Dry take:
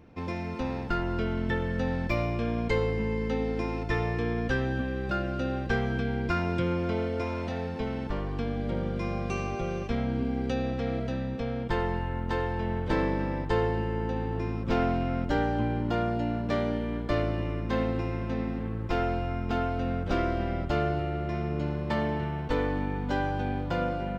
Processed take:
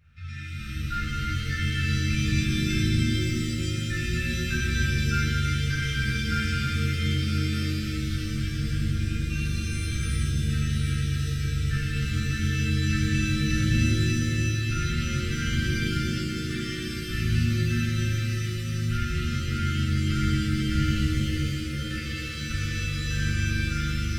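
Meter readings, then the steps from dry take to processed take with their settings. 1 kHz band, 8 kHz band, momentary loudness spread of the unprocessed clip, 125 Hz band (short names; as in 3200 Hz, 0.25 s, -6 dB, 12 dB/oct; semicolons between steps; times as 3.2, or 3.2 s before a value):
-6.0 dB, n/a, 4 LU, +7.0 dB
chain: brick-wall FIR band-stop 160–1200 Hz; shimmer reverb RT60 3.3 s, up +7 st, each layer -2 dB, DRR -9.5 dB; gain -6.5 dB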